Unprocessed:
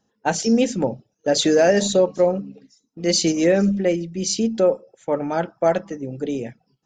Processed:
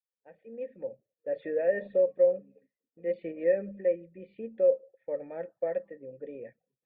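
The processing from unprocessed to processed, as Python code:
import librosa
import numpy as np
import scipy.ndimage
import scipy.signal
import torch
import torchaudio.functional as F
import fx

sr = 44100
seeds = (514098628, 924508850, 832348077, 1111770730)

y = fx.fade_in_head(x, sr, length_s=1.74)
y = fx.formant_cascade(y, sr, vowel='e')
y = y * librosa.db_to_amplitude(-4.0)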